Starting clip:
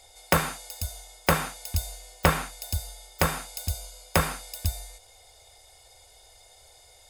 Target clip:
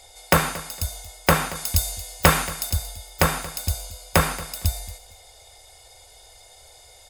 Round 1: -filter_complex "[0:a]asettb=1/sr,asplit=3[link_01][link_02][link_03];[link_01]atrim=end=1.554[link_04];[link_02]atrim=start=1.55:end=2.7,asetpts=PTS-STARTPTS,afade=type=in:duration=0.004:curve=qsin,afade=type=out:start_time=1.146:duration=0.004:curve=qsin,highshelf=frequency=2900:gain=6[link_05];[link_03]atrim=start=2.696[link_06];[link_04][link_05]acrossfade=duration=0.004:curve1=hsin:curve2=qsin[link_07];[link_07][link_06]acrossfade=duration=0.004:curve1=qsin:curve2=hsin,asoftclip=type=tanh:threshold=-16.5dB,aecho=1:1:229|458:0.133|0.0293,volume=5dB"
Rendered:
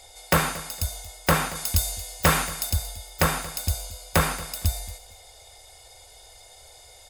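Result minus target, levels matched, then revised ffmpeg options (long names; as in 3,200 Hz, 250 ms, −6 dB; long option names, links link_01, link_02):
soft clipping: distortion +13 dB
-filter_complex "[0:a]asettb=1/sr,asplit=3[link_01][link_02][link_03];[link_01]atrim=end=1.554[link_04];[link_02]atrim=start=1.55:end=2.7,asetpts=PTS-STARTPTS,afade=type=in:duration=0.004:curve=qsin,afade=type=out:start_time=1.146:duration=0.004:curve=qsin,highshelf=frequency=2900:gain=6[link_05];[link_03]atrim=start=2.696[link_06];[link_04][link_05]acrossfade=duration=0.004:curve1=hsin:curve2=qsin[link_07];[link_07][link_06]acrossfade=duration=0.004:curve1=qsin:curve2=hsin,asoftclip=type=tanh:threshold=-5.5dB,aecho=1:1:229|458:0.133|0.0293,volume=5dB"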